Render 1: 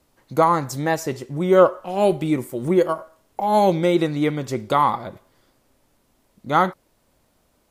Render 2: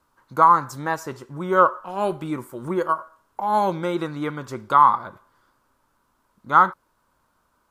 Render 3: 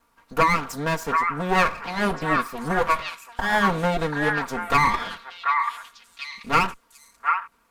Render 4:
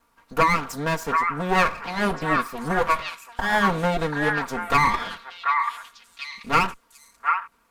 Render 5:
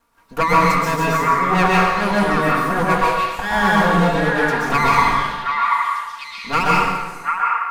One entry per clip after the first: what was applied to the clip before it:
band shelf 1200 Hz +12.5 dB 1 oct; gain -7 dB
minimum comb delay 4.3 ms; compressor 6:1, threshold -19 dBFS, peak gain reduction 8.5 dB; delay with a stepping band-pass 0.735 s, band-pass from 1400 Hz, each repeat 1.4 oct, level -0.5 dB; gain +4 dB
nothing audible
plate-style reverb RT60 1.3 s, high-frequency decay 0.8×, pre-delay 0.11 s, DRR -5 dB

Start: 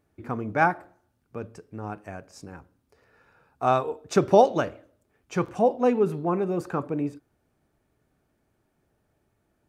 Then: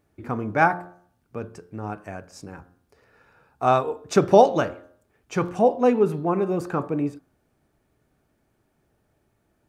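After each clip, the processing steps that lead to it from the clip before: de-hum 88.34 Hz, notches 20; gain +3 dB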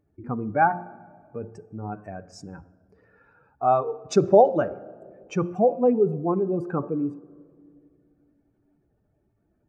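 spectral contrast raised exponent 1.7; on a send at -18 dB: reverb RT60 2.3 s, pre-delay 4 ms; on the sum: gain -1 dB

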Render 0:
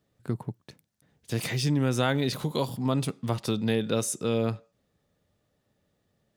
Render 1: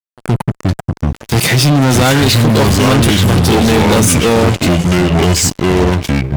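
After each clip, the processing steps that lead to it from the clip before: echoes that change speed 0.282 s, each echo -4 st, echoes 2; reverse echo 0.119 s -20.5 dB; fuzz box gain 32 dB, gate -40 dBFS; gain +6 dB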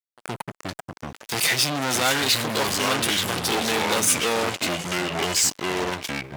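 HPF 1000 Hz 6 dB/oct; gain -6 dB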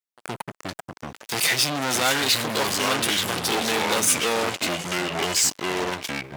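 low shelf 110 Hz -5.5 dB

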